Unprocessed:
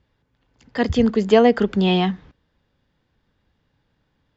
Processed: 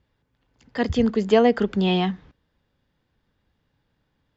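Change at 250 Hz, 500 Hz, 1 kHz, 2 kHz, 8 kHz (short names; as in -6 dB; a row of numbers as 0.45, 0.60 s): -3.0 dB, -3.0 dB, -3.0 dB, -3.0 dB, n/a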